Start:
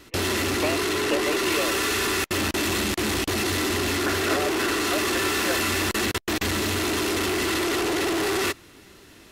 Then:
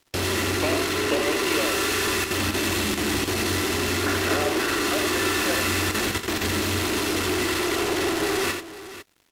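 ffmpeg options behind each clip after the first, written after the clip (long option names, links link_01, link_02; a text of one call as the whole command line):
ffmpeg -i in.wav -filter_complex "[0:a]aeval=exprs='sgn(val(0))*max(abs(val(0))-0.00596,0)':channel_layout=same,asplit=2[link_01][link_02];[link_02]aecho=0:1:44|86|501:0.224|0.473|0.2[link_03];[link_01][link_03]amix=inputs=2:normalize=0" out.wav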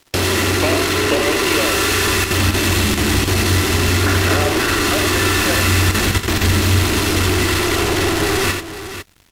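ffmpeg -i in.wav -filter_complex "[0:a]asubboost=boost=3:cutoff=180,asplit=2[link_01][link_02];[link_02]acompressor=threshold=-30dB:ratio=6,volume=-1.5dB[link_03];[link_01][link_03]amix=inputs=2:normalize=0,volume=5dB" out.wav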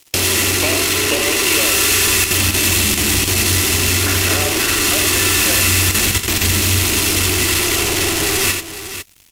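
ffmpeg -i in.wav -af "aexciter=amount=2.8:drive=3.4:freq=2200,volume=-3.5dB" out.wav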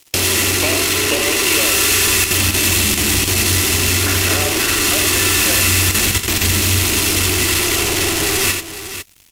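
ffmpeg -i in.wav -af anull out.wav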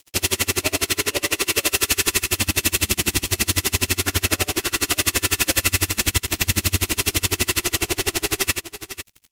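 ffmpeg -i in.wav -af "aeval=exprs='val(0)*pow(10,-31*(0.5-0.5*cos(2*PI*12*n/s))/20)':channel_layout=same" out.wav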